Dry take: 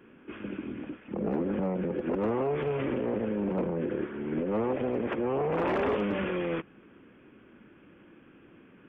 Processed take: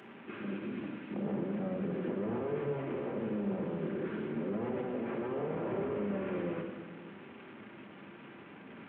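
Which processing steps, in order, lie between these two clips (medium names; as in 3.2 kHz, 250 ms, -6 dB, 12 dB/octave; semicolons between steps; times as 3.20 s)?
one-bit delta coder 16 kbps, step -44.5 dBFS; high-pass 100 Hz 24 dB/octave; hum notches 60/120/180/240/300/360/420 Hz; peak limiter -30 dBFS, peak gain reduction 7.5 dB; simulated room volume 1500 m³, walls mixed, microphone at 1.2 m; trim -1.5 dB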